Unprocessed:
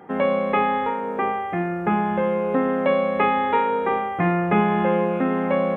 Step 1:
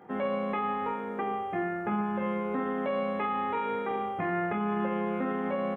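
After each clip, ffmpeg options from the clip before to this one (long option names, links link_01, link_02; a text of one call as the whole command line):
ffmpeg -i in.wav -filter_complex "[0:a]asplit=2[link_01][link_02];[link_02]aecho=0:1:20|48|87.2|142.1|218.9:0.631|0.398|0.251|0.158|0.1[link_03];[link_01][link_03]amix=inputs=2:normalize=0,alimiter=limit=-13.5dB:level=0:latency=1:release=50,volume=-8.5dB" out.wav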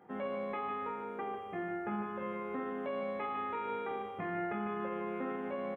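ffmpeg -i in.wav -af "aecho=1:1:152:0.398,volume=-7.5dB" out.wav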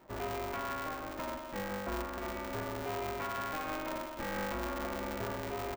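ffmpeg -i in.wav -af "aeval=exprs='val(0)*sgn(sin(2*PI*150*n/s))':channel_layout=same" out.wav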